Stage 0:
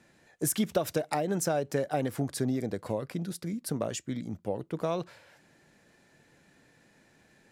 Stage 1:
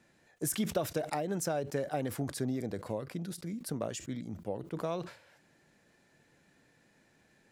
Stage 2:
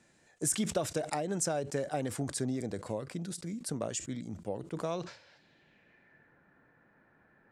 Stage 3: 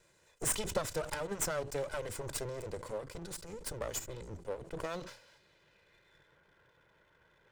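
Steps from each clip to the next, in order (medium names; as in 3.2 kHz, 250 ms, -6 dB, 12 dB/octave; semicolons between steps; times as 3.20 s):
decay stretcher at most 130 dB/s; trim -4.5 dB
low-pass sweep 8.3 kHz -> 1.4 kHz, 4.82–6.37 s
comb filter that takes the minimum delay 2 ms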